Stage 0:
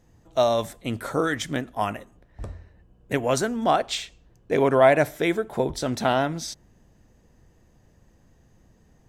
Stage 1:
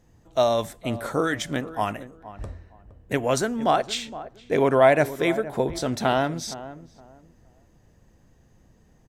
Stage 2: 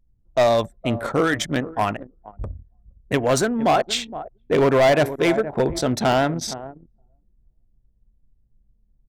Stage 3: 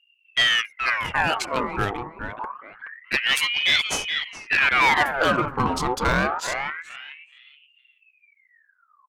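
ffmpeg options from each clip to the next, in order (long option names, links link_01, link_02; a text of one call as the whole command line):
ffmpeg -i in.wav -filter_complex "[0:a]asplit=2[link_01][link_02];[link_02]adelay=466,lowpass=frequency=1100:poles=1,volume=-14dB,asplit=2[link_03][link_04];[link_04]adelay=466,lowpass=frequency=1100:poles=1,volume=0.25,asplit=2[link_05][link_06];[link_06]adelay=466,lowpass=frequency=1100:poles=1,volume=0.25[link_07];[link_01][link_03][link_05][link_07]amix=inputs=4:normalize=0" out.wav
ffmpeg -i in.wav -af "anlmdn=6.31,asoftclip=type=hard:threshold=-17.5dB,volume=5dB" out.wav
ffmpeg -i in.wav -filter_complex "[0:a]asplit=2[link_01][link_02];[link_02]adelay=424,lowpass=frequency=1200:poles=1,volume=-6.5dB,asplit=2[link_03][link_04];[link_04]adelay=424,lowpass=frequency=1200:poles=1,volume=0.26,asplit=2[link_05][link_06];[link_06]adelay=424,lowpass=frequency=1200:poles=1,volume=0.26[link_07];[link_01][link_03][link_05][link_07]amix=inputs=4:normalize=0,aeval=exprs='val(0)*sin(2*PI*1700*n/s+1700*0.65/0.26*sin(2*PI*0.26*n/s))':channel_layout=same" out.wav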